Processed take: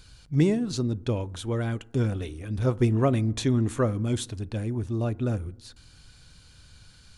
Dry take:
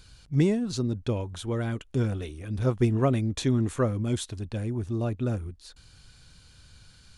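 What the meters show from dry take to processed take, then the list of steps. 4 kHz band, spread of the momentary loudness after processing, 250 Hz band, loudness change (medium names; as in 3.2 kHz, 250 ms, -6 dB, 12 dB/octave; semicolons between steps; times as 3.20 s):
+1.0 dB, 9 LU, +1.0 dB, +1.0 dB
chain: FDN reverb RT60 0.87 s, low-frequency decay 1.25×, high-frequency decay 0.3×, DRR 19.5 dB; trim +1 dB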